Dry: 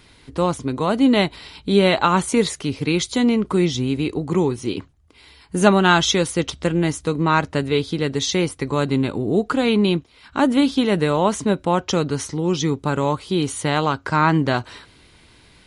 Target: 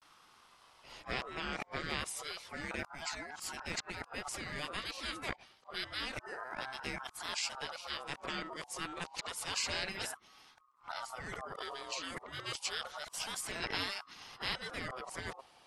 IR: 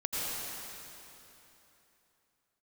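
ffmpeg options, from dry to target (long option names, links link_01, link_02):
-af "areverse,afftfilt=real='re*lt(hypot(re,im),0.355)':imag='im*lt(hypot(re,im),0.355)':win_size=1024:overlap=0.75,aeval=exprs='val(0)*sin(2*PI*1000*n/s+1000*0.2/0.29*sin(2*PI*0.29*n/s))':channel_layout=same,volume=-9dB"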